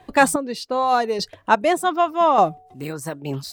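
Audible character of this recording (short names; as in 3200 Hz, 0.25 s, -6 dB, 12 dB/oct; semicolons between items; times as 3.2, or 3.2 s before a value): chopped level 0.84 Hz, depth 60%, duty 30%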